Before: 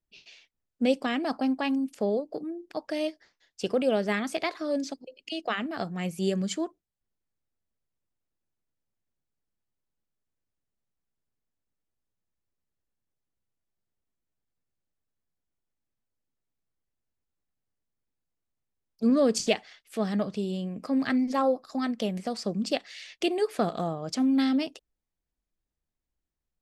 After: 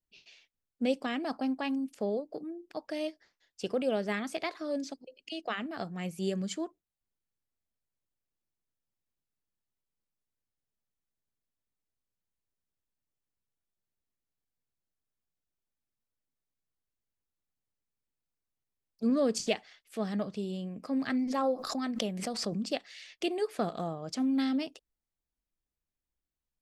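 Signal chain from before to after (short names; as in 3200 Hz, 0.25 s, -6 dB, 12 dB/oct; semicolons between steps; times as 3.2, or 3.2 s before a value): 21.26–22.69 backwards sustainer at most 49 dB/s; gain -5 dB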